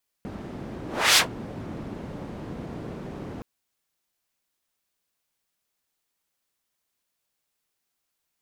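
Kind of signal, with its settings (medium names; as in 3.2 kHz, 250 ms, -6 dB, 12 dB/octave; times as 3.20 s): whoosh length 3.17 s, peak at 0.92 s, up 0.32 s, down 0.12 s, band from 240 Hz, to 4.2 kHz, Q 0.82, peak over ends 20.5 dB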